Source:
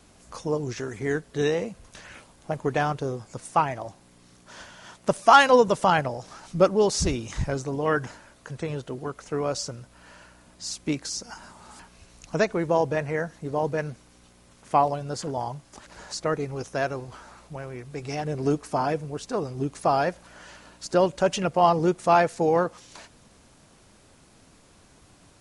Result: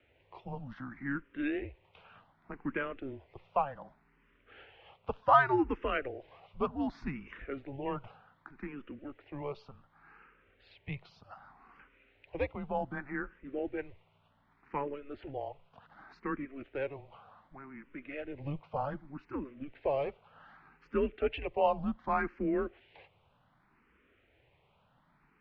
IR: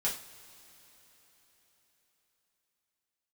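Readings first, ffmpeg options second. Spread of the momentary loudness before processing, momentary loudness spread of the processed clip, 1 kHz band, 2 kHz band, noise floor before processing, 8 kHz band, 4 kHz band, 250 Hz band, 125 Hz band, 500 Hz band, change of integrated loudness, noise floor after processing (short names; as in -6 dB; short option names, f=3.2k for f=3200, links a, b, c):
17 LU, 18 LU, -11.0 dB, -8.5 dB, -56 dBFS, under -40 dB, -18.5 dB, -8.0 dB, -13.5 dB, -12.0 dB, -10.5 dB, -70 dBFS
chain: -filter_complex "[0:a]highpass=f=180:t=q:w=0.5412,highpass=f=180:t=q:w=1.307,lowpass=f=2.9k:t=q:w=0.5176,lowpass=f=2.9k:t=q:w=0.7071,lowpass=f=2.9k:t=q:w=1.932,afreqshift=-140,highshelf=f=2.1k:g=9,asplit=2[a][b];[b]afreqshift=0.66[c];[a][c]amix=inputs=2:normalize=1,volume=-8.5dB"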